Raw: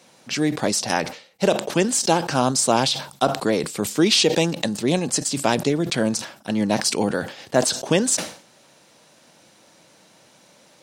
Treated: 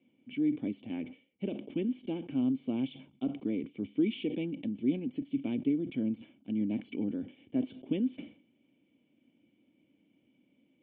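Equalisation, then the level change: vocal tract filter i; air absorption 310 m; bell 160 Hz -5.5 dB 0.68 oct; -1.0 dB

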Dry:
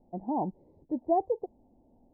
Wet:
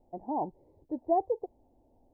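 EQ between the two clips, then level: bell 200 Hz -11.5 dB 0.7 oct; 0.0 dB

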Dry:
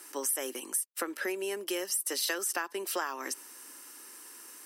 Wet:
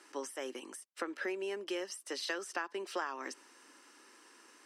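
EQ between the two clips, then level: air absorption 110 m; -3.0 dB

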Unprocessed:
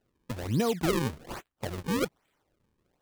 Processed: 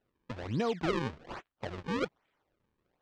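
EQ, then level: air absorption 140 m; low shelf 440 Hz -6.5 dB; high shelf 6300 Hz -5.5 dB; 0.0 dB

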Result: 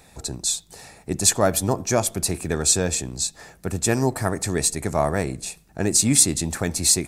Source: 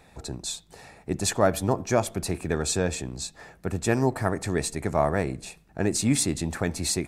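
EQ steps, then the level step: tone controls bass +1 dB, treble +10 dB; +1.5 dB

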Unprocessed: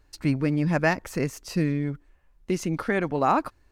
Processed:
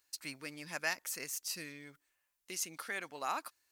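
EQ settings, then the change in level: differentiator; +2.5 dB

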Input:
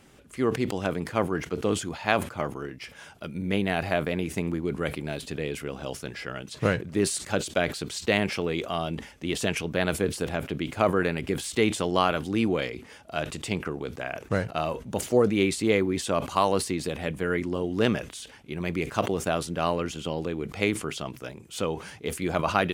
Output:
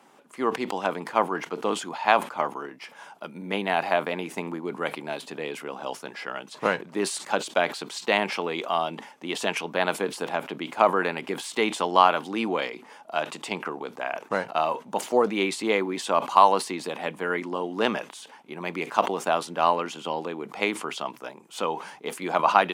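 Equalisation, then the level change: HPF 190 Hz 24 dB/oct; bell 920 Hz +14 dB 0.96 oct; dynamic EQ 3200 Hz, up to +5 dB, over -39 dBFS, Q 0.71; -4.0 dB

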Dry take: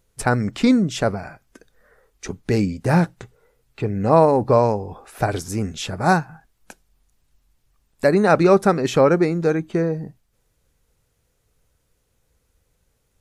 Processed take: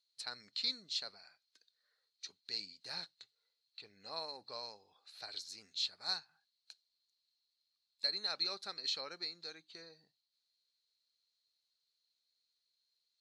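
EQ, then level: band-pass 4200 Hz, Q 18; +8.0 dB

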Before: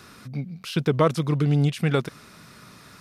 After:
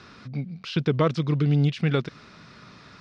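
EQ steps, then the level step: dynamic EQ 830 Hz, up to -5 dB, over -36 dBFS, Q 0.9; LPF 5300 Hz 24 dB/oct; 0.0 dB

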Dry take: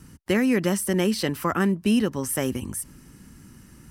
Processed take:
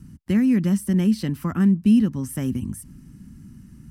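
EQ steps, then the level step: resonant low shelf 320 Hz +11.5 dB, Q 1.5; -8.0 dB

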